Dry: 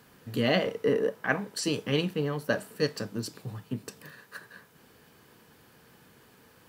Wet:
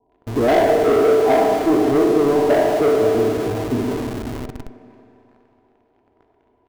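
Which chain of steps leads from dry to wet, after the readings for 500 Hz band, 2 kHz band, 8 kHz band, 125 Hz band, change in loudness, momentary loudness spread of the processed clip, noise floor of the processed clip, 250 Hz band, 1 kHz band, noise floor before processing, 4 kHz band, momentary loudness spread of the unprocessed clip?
+15.5 dB, +4.5 dB, +4.0 dB, +6.0 dB, +13.0 dB, 12 LU, -63 dBFS, +13.0 dB, +18.0 dB, -59 dBFS, +1.0 dB, 19 LU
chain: spectral trails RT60 0.91 s; Chebyshev low-pass 990 Hz, order 10; bell 130 Hz -10 dB 2.6 oct; comb 2.9 ms, depth 96%; sample leveller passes 3; on a send: feedback echo 0.543 s, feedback 16%, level -14 dB; on the sum: Schroeder reverb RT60 2.9 s, combs from 28 ms, DRR 3 dB; in parallel at -9 dB: Schmitt trigger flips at -34 dBFS; on the sum: gain +2.5 dB

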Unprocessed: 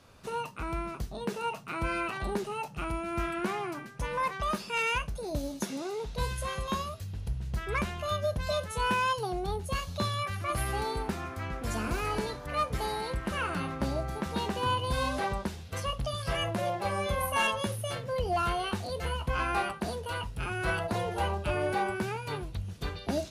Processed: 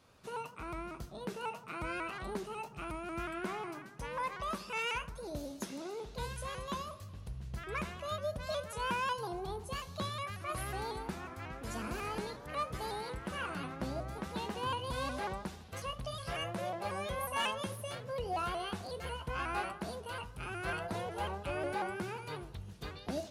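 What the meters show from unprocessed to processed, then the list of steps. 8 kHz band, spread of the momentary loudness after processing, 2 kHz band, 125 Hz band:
-6.5 dB, 7 LU, -6.5 dB, -9.0 dB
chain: low shelf 61 Hz -9 dB; analogue delay 77 ms, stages 1024, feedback 66%, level -16 dB; shaped vibrato saw up 5.5 Hz, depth 100 cents; gain -6.5 dB

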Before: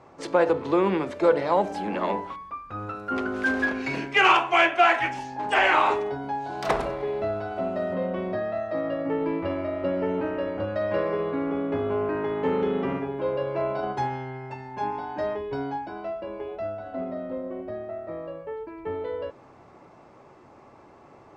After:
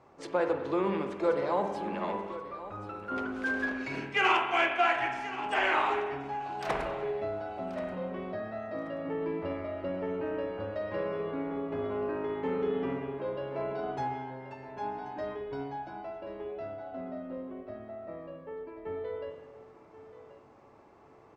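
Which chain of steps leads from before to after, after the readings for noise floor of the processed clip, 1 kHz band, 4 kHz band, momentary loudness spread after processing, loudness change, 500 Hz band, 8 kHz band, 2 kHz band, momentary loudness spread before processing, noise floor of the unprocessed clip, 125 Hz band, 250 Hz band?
-56 dBFS, -7.0 dB, -7.0 dB, 15 LU, -7.0 dB, -7.0 dB, n/a, -6.5 dB, 15 LU, -52 dBFS, -7.0 dB, -7.0 dB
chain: feedback echo 1.081 s, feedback 24%, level -15 dB; spring tank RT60 1.2 s, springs 50/55 ms, chirp 75 ms, DRR 5.5 dB; gain -8 dB

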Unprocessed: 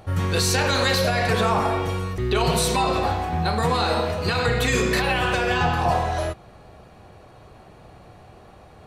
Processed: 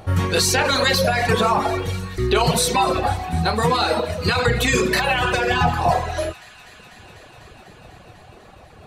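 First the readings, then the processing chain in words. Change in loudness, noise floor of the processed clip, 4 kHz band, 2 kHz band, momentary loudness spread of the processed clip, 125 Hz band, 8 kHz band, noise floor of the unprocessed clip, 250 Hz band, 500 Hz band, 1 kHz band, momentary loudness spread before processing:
+2.5 dB, -46 dBFS, +3.5 dB, +3.0 dB, 6 LU, +1.0 dB, +4.0 dB, -48 dBFS, +2.0 dB, +2.5 dB, +2.5 dB, 5 LU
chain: reverb removal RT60 1.4 s; thin delay 0.248 s, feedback 84%, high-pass 1600 Hz, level -20.5 dB; gain +5 dB

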